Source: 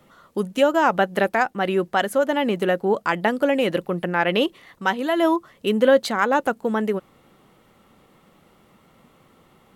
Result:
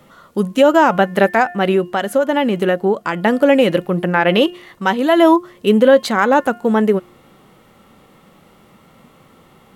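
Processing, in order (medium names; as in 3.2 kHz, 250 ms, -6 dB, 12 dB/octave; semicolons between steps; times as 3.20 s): 1.70–3.25 s: compression, threshold -20 dBFS, peak gain reduction 6 dB; harmonic-percussive split harmonic +5 dB; de-hum 355.2 Hz, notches 9; loudness maximiser +5 dB; trim -1 dB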